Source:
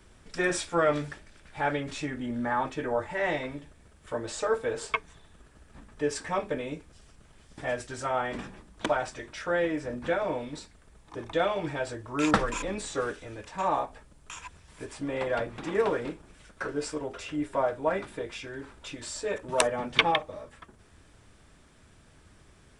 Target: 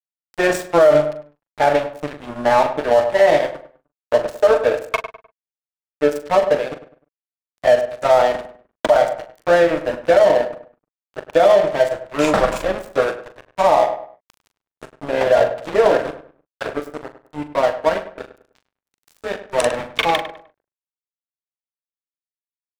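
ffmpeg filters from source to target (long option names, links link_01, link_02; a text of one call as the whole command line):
ffmpeg -i in.wav -filter_complex "[0:a]asetnsamples=nb_out_samples=441:pad=0,asendcmd='16.78 equalizer g 4',equalizer=frequency=630:width_type=o:width=0.64:gain=14.5,aeval=exprs='sgn(val(0))*max(abs(val(0))-0.0316,0)':channel_layout=same,asplit=2[link_01][link_02];[link_02]adelay=41,volume=-11dB[link_03];[link_01][link_03]amix=inputs=2:normalize=0,asplit=2[link_04][link_05];[link_05]adelay=101,lowpass=frequency=2200:poles=1,volume=-12dB,asplit=2[link_06][link_07];[link_07]adelay=101,lowpass=frequency=2200:poles=1,volume=0.34,asplit=2[link_08][link_09];[link_09]adelay=101,lowpass=frequency=2200:poles=1,volume=0.34[link_10];[link_04][link_06][link_08][link_10]amix=inputs=4:normalize=0,alimiter=level_in=12.5dB:limit=-1dB:release=50:level=0:latency=1,volume=-3dB" out.wav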